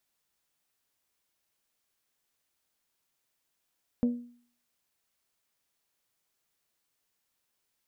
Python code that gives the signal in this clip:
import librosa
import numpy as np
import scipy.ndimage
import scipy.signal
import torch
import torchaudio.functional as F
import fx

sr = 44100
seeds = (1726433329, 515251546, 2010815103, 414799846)

y = fx.strike_glass(sr, length_s=0.89, level_db=-20, body='bell', hz=241.0, decay_s=0.51, tilt_db=11.0, modes=5)